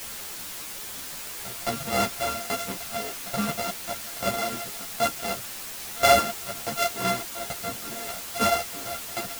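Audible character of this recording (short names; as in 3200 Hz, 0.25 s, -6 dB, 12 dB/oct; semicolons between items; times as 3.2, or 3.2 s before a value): a buzz of ramps at a fixed pitch in blocks of 64 samples; tremolo saw down 1.2 Hz, depth 95%; a quantiser's noise floor 6-bit, dither triangular; a shimmering, thickened sound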